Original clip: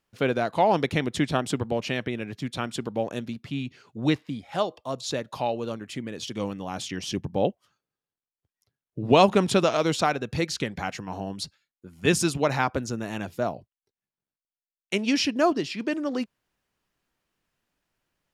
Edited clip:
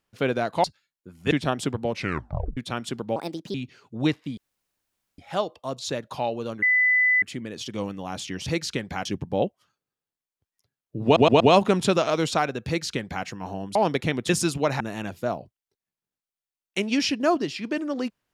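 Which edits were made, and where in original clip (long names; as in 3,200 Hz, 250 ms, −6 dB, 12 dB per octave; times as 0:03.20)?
0:00.64–0:01.18: swap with 0:11.42–0:12.09
0:01.79: tape stop 0.65 s
0:03.03–0:03.57: play speed 141%
0:04.40: splice in room tone 0.81 s
0:05.84: insert tone 2,000 Hz −16.5 dBFS 0.60 s
0:09.07: stutter 0.12 s, 4 plays
0:10.33–0:10.92: duplicate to 0:07.08
0:12.60–0:12.96: remove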